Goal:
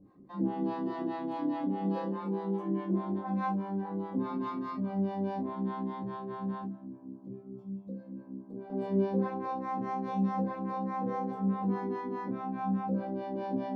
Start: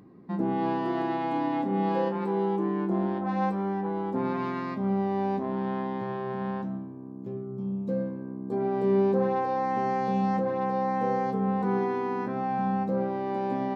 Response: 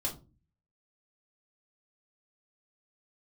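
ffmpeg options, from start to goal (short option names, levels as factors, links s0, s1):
-filter_complex "[0:a]asettb=1/sr,asplit=3[s0][s1][s2];[s0]atrim=end=6.634[s3];[s1]atrim=start=6.63:end=8.7,asetpts=PTS-STARTPTS,afade=t=in:d=0.004:c=qsin,afade=t=out:st=2.066:d=0.004:c=qsin,acompressor=threshold=0.0178:ratio=6[s4];[s2]atrim=start=8.696[s5];[s3][s4]acrossfade=d=0.004:c1=hsin:c2=qsin[s6];[s6][s5]acrossfade=d=0.004:c1=qsin:c2=hsin,acrossover=split=540[s7][s8];[s7]aeval=exprs='val(0)*(1-1/2+1/2*cos(2*PI*4.8*n/s))':c=same[s9];[s8]aeval=exprs='val(0)*(1-1/2-1/2*cos(2*PI*4.8*n/s))':c=same[s10];[s9][s10]amix=inputs=2:normalize=0[s11];[1:a]atrim=start_sample=2205,atrim=end_sample=3087[s12];[s11][s12]afir=irnorm=-1:irlink=0,volume=0.501"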